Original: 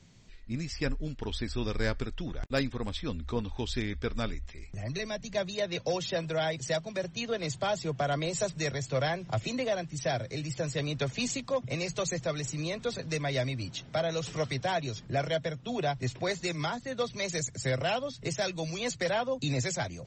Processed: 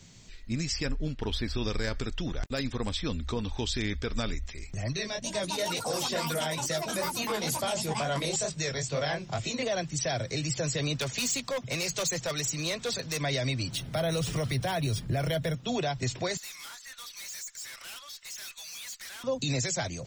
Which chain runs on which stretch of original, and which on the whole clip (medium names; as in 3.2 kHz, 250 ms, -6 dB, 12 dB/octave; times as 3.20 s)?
0.91–1.55 s: median filter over 5 samples + distance through air 84 m
4.93–9.63 s: chorus 2.2 Hz, delay 19 ms, depth 7.1 ms + ever faster or slower copies 292 ms, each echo +7 st, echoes 2, each echo -6 dB
10.96–13.21 s: bass shelf 480 Hz -5 dB + hard clipper -31.5 dBFS
13.72–15.55 s: bass shelf 170 Hz +10.5 dB + decimation joined by straight lines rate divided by 3×
16.37–19.24 s: high-pass 1.2 kHz 24 dB/octave + valve stage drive 49 dB, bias 0.35
whole clip: treble shelf 4.2 kHz +10 dB; peak limiter -24.5 dBFS; trim +3.5 dB